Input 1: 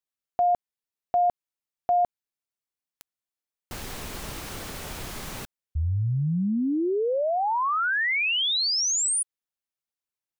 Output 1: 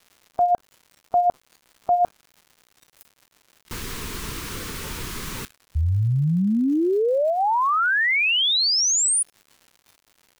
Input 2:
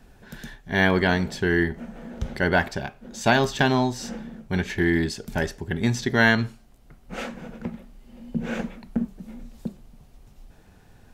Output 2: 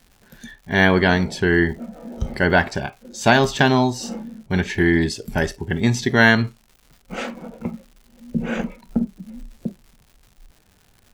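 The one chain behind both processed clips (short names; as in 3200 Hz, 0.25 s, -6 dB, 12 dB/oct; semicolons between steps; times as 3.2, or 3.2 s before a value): crackle 220/s -34 dBFS; spectral noise reduction 11 dB; gain +4.5 dB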